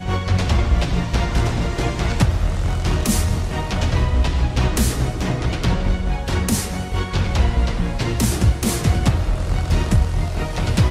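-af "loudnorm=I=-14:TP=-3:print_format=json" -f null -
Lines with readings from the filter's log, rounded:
"input_i" : "-20.5",
"input_tp" : "-4.4",
"input_lra" : "1.4",
"input_thresh" : "-30.5",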